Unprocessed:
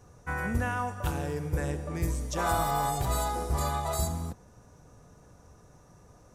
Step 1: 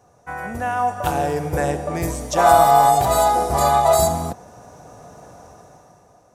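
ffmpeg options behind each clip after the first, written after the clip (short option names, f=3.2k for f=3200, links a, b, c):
-af "highpass=f=180:p=1,equalizer=f=710:w=2.5:g=10.5,dynaudnorm=f=200:g=9:m=13.5dB"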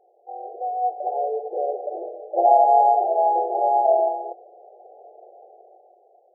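-af "afftfilt=real='re*between(b*sr/4096,340,850)':imag='im*between(b*sr/4096,340,850)':win_size=4096:overlap=0.75,volume=-2dB"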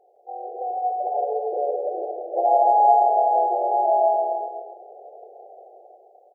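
-filter_complex "[0:a]bandreject=f=50:t=h:w=6,bandreject=f=100:t=h:w=6,bandreject=f=150:t=h:w=6,bandreject=f=200:t=h:w=6,bandreject=f=250:t=h:w=6,bandreject=f=300:t=h:w=6,bandreject=f=350:t=h:w=6,asplit=2[a][b];[b]acompressor=threshold=-27dB:ratio=6,volume=2dB[c];[a][c]amix=inputs=2:normalize=0,aecho=1:1:160|296|411.6|509.9|593.4:0.631|0.398|0.251|0.158|0.1,volume=-6dB"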